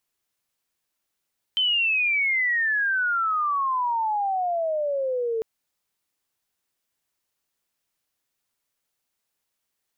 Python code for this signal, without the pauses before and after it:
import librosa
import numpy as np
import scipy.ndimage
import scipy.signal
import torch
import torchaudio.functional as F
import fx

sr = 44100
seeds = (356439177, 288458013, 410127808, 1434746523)

y = fx.chirp(sr, length_s=3.85, from_hz=3100.0, to_hz=440.0, law='logarithmic', from_db=-19.0, to_db=-23.0)